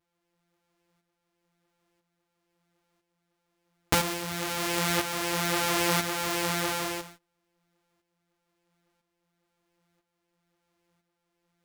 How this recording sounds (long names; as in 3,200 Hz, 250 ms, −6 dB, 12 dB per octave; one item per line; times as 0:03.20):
a buzz of ramps at a fixed pitch in blocks of 256 samples
tremolo saw up 1 Hz, depth 60%
a shimmering, thickened sound